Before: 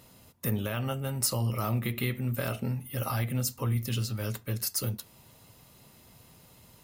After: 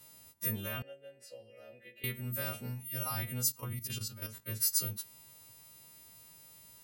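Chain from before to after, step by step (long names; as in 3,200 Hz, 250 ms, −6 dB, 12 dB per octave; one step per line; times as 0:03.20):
every partial snapped to a pitch grid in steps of 2 semitones
0:00.82–0:02.04: formant filter e
0:03.51–0:04.46: output level in coarse steps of 10 dB
level −8 dB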